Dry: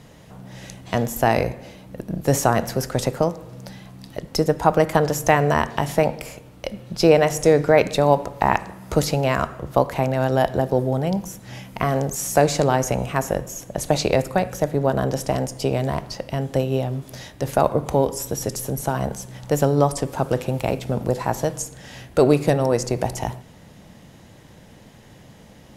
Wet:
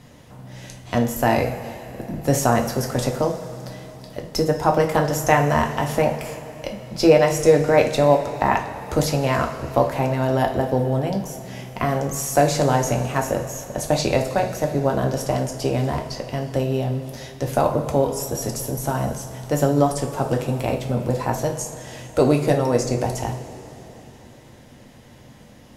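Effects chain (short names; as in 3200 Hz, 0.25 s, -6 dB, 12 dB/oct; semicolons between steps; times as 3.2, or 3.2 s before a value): two-slope reverb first 0.32 s, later 3.6 s, from -17 dB, DRR 2 dB; gain -2 dB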